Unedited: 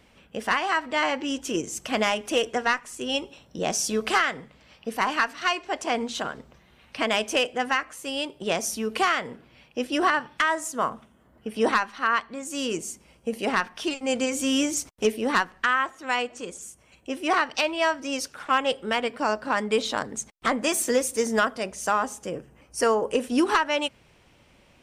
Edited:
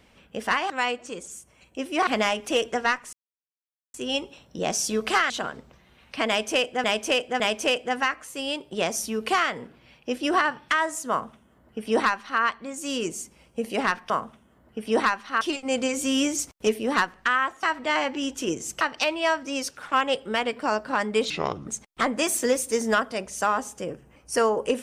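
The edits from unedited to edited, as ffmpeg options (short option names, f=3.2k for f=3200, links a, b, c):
-filter_complex "[0:a]asplit=13[a][b][c][d][e][f][g][h][i][j][k][l][m];[a]atrim=end=0.702[n];[b]atrim=start=16.008:end=17.382[o];[c]atrim=start=1.878:end=2.94,asetpts=PTS-STARTPTS,afade=t=out:st=1.058:d=0.004:c=hsin,apad=pad_dur=0.81[p];[d]atrim=start=2.94:end=4.302,asetpts=PTS-STARTPTS,afade=t=in:d=0.004:c=hsin[q];[e]atrim=start=6.108:end=7.652[r];[f]atrim=start=7.088:end=7.652[s];[g]atrim=start=7.088:end=13.792[t];[h]atrim=start=10.788:end=12.102[u];[i]atrim=start=13.788:end=16.012[v];[j]atrim=start=0.698:end=1.882[w];[k]atrim=start=17.378:end=19.874[x];[l]atrim=start=19.87:end=20.13,asetpts=PTS-STARTPTS,asetrate=30429,aresample=44100,atrim=end_sample=16617,asetpts=PTS-STARTPTS[y];[m]atrim=start=20.126[z];[n][o]acrossfade=d=0.004:c1=hsin:c2=hsin[aa];[p][q]concat=n=2:v=0:a=1[ab];[aa][ab]acrossfade=d=0.004:c1=hsin:c2=hsin[ac];[ac][r]acrossfade=d=0.004:c1=hsin:c2=hsin[ad];[ad][s]acrossfade=d=0.004:c1=hsin:c2=hsin[ae];[ae][t]acrossfade=d=0.004:c1=hsin:c2=hsin[af];[af][u]acrossfade=d=0.004:c1=hsin:c2=hsin[ag];[ag][v]acrossfade=d=0.004:c1=hsin:c2=hsin[ah];[ah][w]acrossfade=d=0.004:c1=hsin:c2=hsin[ai];[ai][x]acrossfade=d=0.004:c1=hsin:c2=hsin[aj];[aj][y]acrossfade=d=0.004:c1=hsin:c2=hsin[ak];[ak][z]acrossfade=d=0.004:c1=hsin:c2=hsin"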